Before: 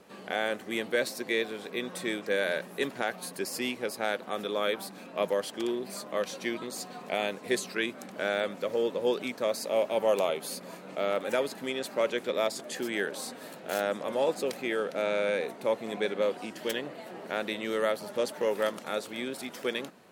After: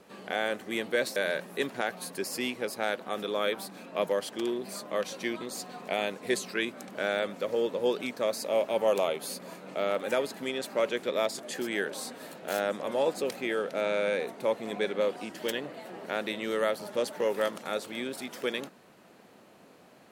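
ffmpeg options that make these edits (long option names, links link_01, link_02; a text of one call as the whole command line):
ffmpeg -i in.wav -filter_complex "[0:a]asplit=2[link_01][link_02];[link_01]atrim=end=1.162[link_03];[link_02]atrim=start=2.368[link_04];[link_03][link_04]acrossfade=duration=0.004:curve1=hsin:curve2=hsin" out.wav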